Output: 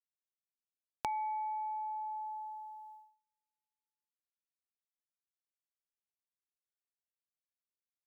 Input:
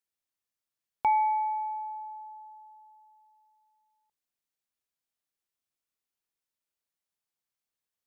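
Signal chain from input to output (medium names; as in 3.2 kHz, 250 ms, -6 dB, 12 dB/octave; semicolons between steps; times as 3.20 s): gate -58 dBFS, range -34 dB; compression 4:1, threshold -43 dBFS, peak gain reduction 17.5 dB; trim +4.5 dB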